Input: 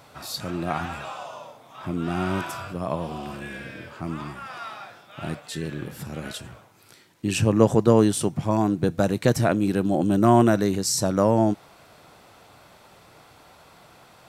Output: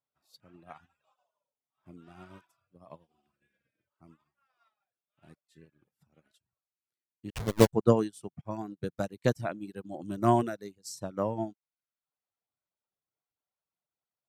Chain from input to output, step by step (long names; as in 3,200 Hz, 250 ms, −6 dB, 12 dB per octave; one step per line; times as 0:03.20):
0:07.30–0:07.73: hold until the input has moved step −15 dBFS
reverb reduction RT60 1.1 s
expander for the loud parts 2.5 to 1, over −43 dBFS